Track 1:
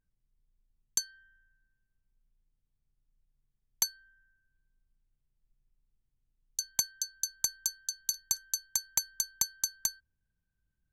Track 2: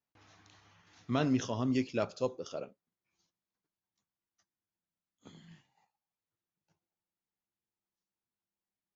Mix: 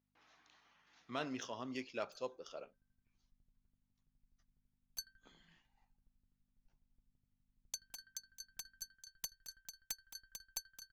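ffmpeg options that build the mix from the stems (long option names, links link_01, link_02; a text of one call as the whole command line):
ffmpeg -i stem1.wav -i stem2.wav -filter_complex "[0:a]bass=frequency=250:gain=9,treble=frequency=4000:gain=-3,aeval=exprs='0.0596*(abs(mod(val(0)/0.0596+3,4)-2)-1)':channel_layout=same,aeval=exprs='val(0)*pow(10,-22*if(lt(mod(12*n/s,1),2*abs(12)/1000),1-mod(12*n/s,1)/(2*abs(12)/1000),(mod(12*n/s,1)-2*abs(12)/1000)/(1-2*abs(12)/1000))/20)':channel_layout=same,adelay=1150,volume=-4dB[link_01];[1:a]aeval=exprs='val(0)+0.000794*(sin(2*PI*50*n/s)+sin(2*PI*2*50*n/s)/2+sin(2*PI*3*50*n/s)/3+sin(2*PI*4*50*n/s)/4+sin(2*PI*5*50*n/s)/5)':channel_layout=same,adynamicsmooth=sensitivity=5.5:basefreq=5900,highpass=frequency=900:poles=1,volume=-3.5dB,asplit=2[link_02][link_03];[link_03]apad=whole_len=532412[link_04];[link_01][link_04]sidechaincompress=threshold=-55dB:ratio=8:attack=16:release=324[link_05];[link_05][link_02]amix=inputs=2:normalize=0" out.wav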